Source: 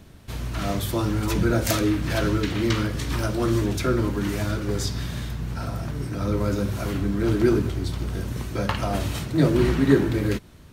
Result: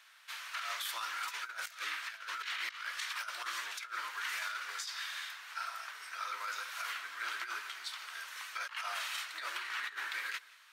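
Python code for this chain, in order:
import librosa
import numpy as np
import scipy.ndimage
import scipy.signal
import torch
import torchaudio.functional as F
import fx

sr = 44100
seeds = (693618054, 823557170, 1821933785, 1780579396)

y = scipy.signal.sosfilt(scipy.signal.butter(4, 1300.0, 'highpass', fs=sr, output='sos'), x)
y = fx.high_shelf(y, sr, hz=4400.0, db=-11.0)
y = fx.over_compress(y, sr, threshold_db=-40.0, ratio=-0.5)
y = y + 10.0 ** (-21.5 / 20.0) * np.pad(y, (int(177 * sr / 1000.0), 0))[:len(y)]
y = y * 10.0 ** (1.0 / 20.0)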